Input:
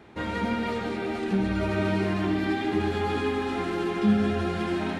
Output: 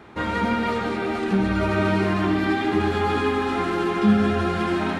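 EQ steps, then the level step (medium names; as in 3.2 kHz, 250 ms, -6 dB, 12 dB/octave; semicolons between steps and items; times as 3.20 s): peaking EQ 1.2 kHz +5.5 dB 0.75 oct; +4.0 dB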